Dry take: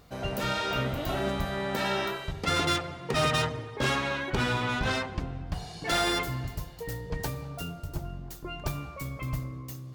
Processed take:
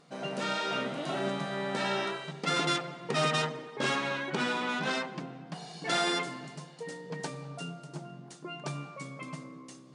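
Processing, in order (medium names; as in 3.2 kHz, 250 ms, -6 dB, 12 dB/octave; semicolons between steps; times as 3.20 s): FFT band-pass 130–10000 Hz; trim -2 dB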